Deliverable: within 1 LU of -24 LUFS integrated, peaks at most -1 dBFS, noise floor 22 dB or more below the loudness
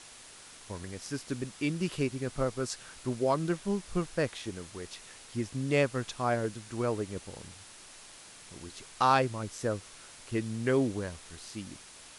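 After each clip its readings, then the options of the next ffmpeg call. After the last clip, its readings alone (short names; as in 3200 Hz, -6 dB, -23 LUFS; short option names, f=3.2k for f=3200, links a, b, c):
noise floor -52 dBFS; noise floor target -55 dBFS; loudness -32.5 LUFS; peak -12.0 dBFS; loudness target -24.0 LUFS
-> -af "afftdn=nr=6:nf=-52"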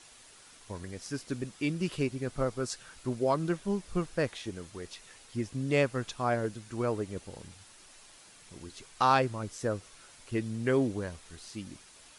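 noise floor -56 dBFS; loudness -32.5 LUFS; peak -12.0 dBFS; loudness target -24.0 LUFS
-> -af "volume=8.5dB"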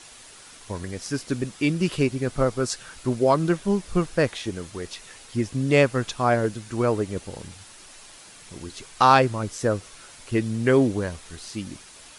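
loudness -24.0 LUFS; peak -3.5 dBFS; noise floor -47 dBFS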